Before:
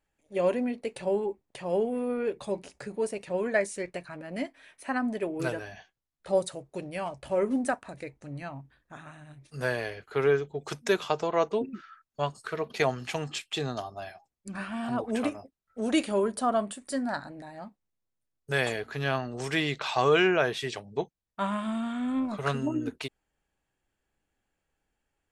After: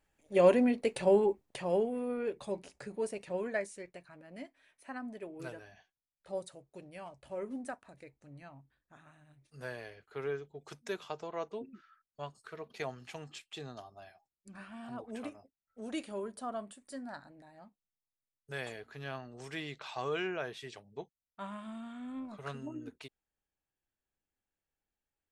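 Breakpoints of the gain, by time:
1.45 s +2.5 dB
1.93 s -5.5 dB
3.32 s -5.5 dB
3.9 s -13 dB

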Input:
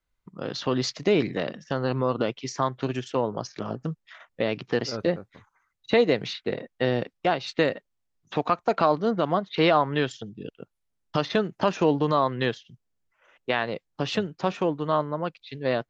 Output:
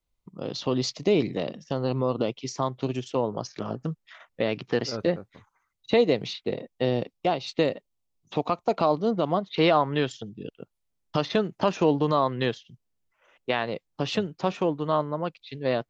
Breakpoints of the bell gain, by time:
bell 1600 Hz 0.69 oct
3.03 s -12.5 dB
3.57 s -2 dB
5.18 s -2 dB
6.31 s -12 dB
9.09 s -12 dB
9.73 s -4 dB

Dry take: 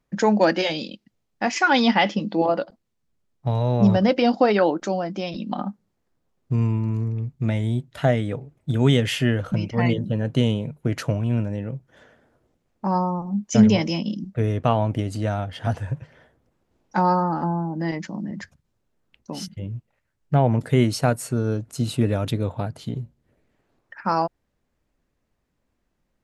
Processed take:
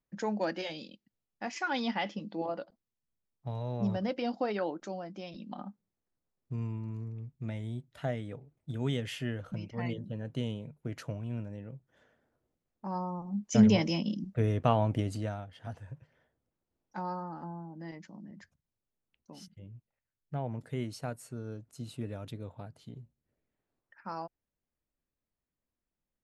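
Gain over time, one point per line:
12.85 s -14.5 dB
13.69 s -6 dB
15.1 s -6 dB
15.5 s -17.5 dB

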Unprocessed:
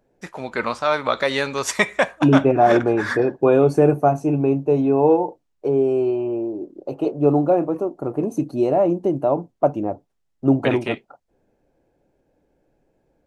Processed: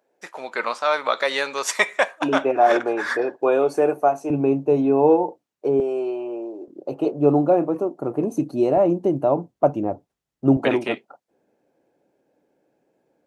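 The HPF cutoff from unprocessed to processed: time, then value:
460 Hz
from 4.3 s 170 Hz
from 5.8 s 470 Hz
from 6.68 s 130 Hz
from 8.77 s 58 Hz
from 10.57 s 210 Hz

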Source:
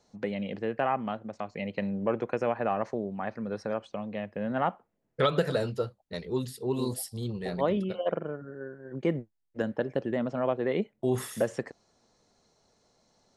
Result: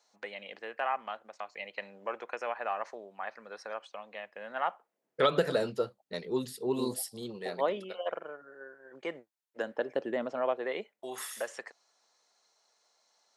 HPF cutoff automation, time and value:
4.63 s 870 Hz
5.31 s 220 Hz
6.91 s 220 Hz
8.08 s 720 Hz
9.16 s 720 Hz
10.12 s 350 Hz
11.15 s 910 Hz

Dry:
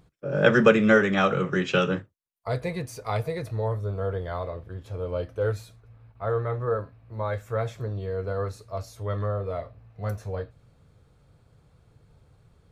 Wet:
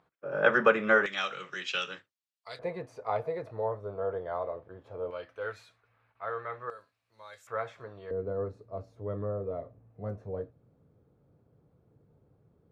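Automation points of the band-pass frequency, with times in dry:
band-pass, Q 0.99
1100 Hz
from 1.06 s 4000 Hz
from 2.59 s 710 Hz
from 5.11 s 1800 Hz
from 6.7 s 6800 Hz
from 7.47 s 1300 Hz
from 8.11 s 310 Hz

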